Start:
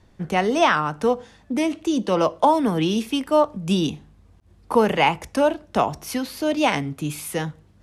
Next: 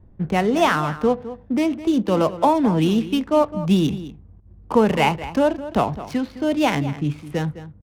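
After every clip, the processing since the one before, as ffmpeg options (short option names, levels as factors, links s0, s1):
-filter_complex "[0:a]lowshelf=f=270:g=9,adynamicsmooth=sensitivity=7:basefreq=920,asplit=2[s0][s1];[s1]adelay=209.9,volume=0.2,highshelf=f=4000:g=-4.72[s2];[s0][s2]amix=inputs=2:normalize=0,volume=0.841"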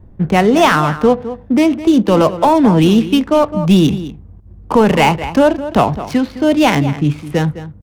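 -af "apsyclip=3.98,volume=0.668"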